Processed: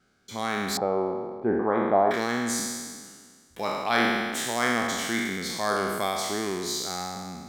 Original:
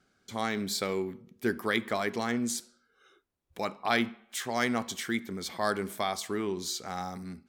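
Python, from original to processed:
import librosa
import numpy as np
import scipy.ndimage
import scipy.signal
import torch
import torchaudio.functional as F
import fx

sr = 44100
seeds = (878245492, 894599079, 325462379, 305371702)

y = fx.spec_trails(x, sr, decay_s=1.74)
y = fx.lowpass_res(y, sr, hz=800.0, q=4.9, at=(0.77, 2.11))
y = fx.quant_float(y, sr, bits=8)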